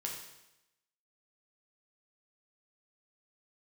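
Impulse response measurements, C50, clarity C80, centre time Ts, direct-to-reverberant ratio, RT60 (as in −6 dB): 4.0 dB, 6.5 dB, 40 ms, −1.0 dB, 0.90 s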